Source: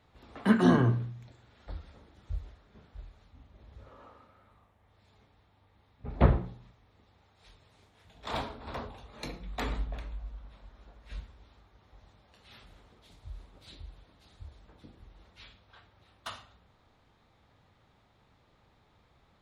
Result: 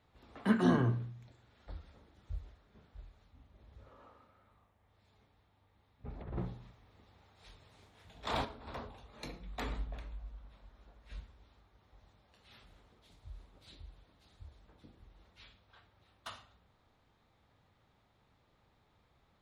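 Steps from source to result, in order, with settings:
0:06.20–0:08.45: compressor whose output falls as the input rises −33 dBFS, ratio −1
level −5.5 dB

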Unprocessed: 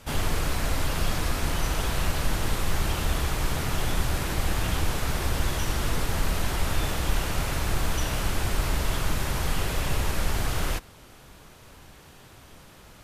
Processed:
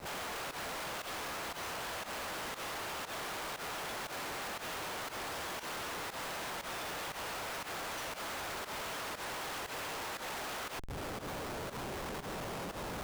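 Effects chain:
high-pass filter 550 Hz 12 dB per octave
high-shelf EQ 3,100 Hz −5 dB
downward compressor 6 to 1, threshold −45 dBFS, peak gain reduction 13 dB
comparator with hysteresis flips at −52 dBFS
fake sidechain pumping 118 BPM, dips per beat 1, −15 dB, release 89 ms
level +7.5 dB

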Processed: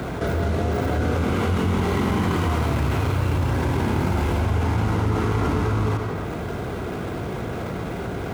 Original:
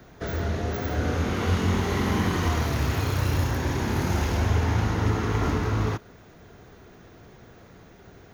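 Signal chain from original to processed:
running median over 9 samples
high-pass filter 50 Hz
notch filter 1,800 Hz, Q 7.9
on a send at −14 dB: convolution reverb RT60 1.1 s, pre-delay 60 ms
on the sum: envelope flattener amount 70%

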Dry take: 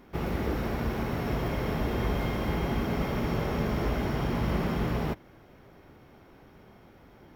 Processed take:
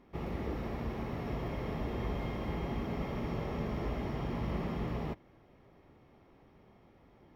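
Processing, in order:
low-pass filter 3,600 Hz 6 dB per octave
notch filter 1,500 Hz, Q 7
level −7 dB

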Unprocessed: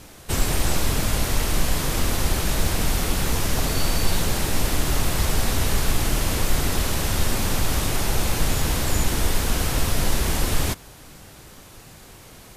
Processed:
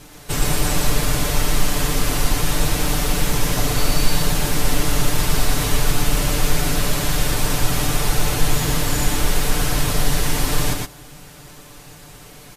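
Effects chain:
comb filter 6.8 ms
single-tap delay 118 ms −3 dB

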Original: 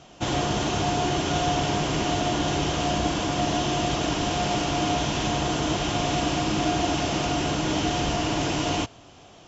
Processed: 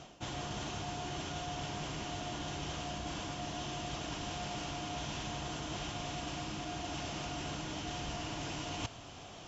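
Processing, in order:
reversed playback
downward compressor 12 to 1, threshold −36 dBFS, peak gain reduction 16.5 dB
reversed playback
dynamic equaliser 390 Hz, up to −5 dB, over −54 dBFS, Q 0.82
level +1 dB

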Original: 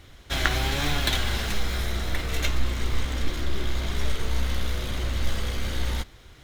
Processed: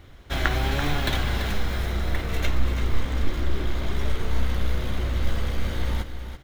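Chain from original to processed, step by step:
parametric band 7,300 Hz −9 dB 2.8 octaves
on a send: single-tap delay 336 ms −9.5 dB
on the sum: level +2 dB

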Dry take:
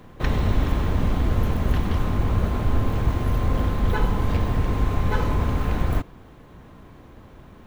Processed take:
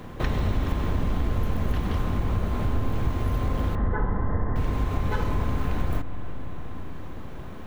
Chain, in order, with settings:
0:03.75–0:04.56: linear-phase brick-wall low-pass 2,100 Hz
convolution reverb RT60 4.4 s, pre-delay 33 ms, DRR 12 dB
downward compressor 2 to 1, threshold −35 dBFS, peak gain reduction 11.5 dB
level +6 dB

